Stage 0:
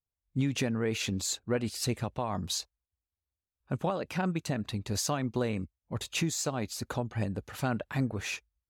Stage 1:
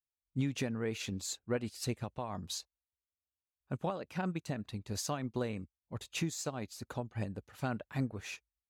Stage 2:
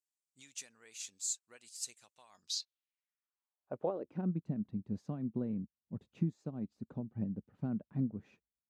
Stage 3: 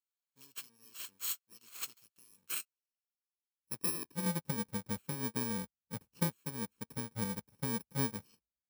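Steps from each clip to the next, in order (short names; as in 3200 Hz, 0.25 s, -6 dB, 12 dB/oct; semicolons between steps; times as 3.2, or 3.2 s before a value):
upward expander 1.5:1, over -46 dBFS; gain -3.5 dB
band-pass sweep 7600 Hz -> 200 Hz, 2.3–4.35; gain +6 dB
FFT order left unsorted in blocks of 64 samples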